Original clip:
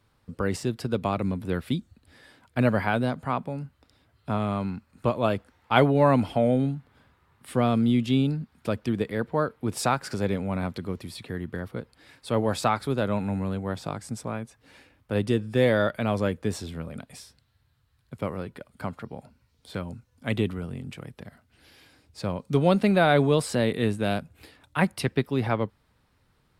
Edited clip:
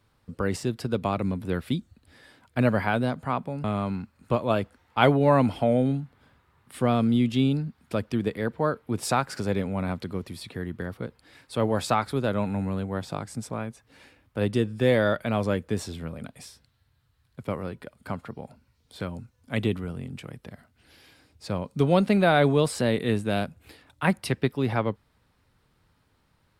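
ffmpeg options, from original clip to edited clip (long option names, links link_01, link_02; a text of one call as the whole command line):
ffmpeg -i in.wav -filter_complex "[0:a]asplit=2[link_01][link_02];[link_01]atrim=end=3.642[link_03];[link_02]atrim=start=4.378[link_04];[link_03][link_04]acrossfade=duration=0.004:curve1=hsin:curve2=hsin" out.wav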